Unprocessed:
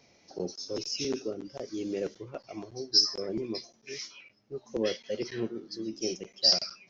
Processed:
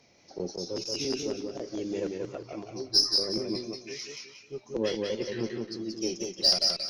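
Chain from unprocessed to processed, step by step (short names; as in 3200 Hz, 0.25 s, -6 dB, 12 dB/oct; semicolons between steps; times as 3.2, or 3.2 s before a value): added harmonics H 8 -33 dB, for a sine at -9.5 dBFS; warbling echo 0.18 s, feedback 32%, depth 83 cents, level -3.5 dB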